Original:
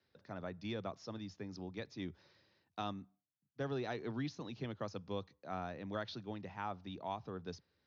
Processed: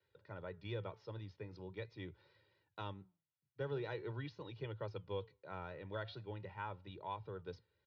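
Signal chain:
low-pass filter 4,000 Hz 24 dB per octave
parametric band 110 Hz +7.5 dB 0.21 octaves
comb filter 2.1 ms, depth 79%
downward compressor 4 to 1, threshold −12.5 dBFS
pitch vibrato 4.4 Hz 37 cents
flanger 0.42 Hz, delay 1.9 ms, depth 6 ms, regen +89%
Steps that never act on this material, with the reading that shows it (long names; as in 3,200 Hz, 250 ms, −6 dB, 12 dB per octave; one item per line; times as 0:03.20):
downward compressor, threshold −12.5 dBFS: peak of its input −24.5 dBFS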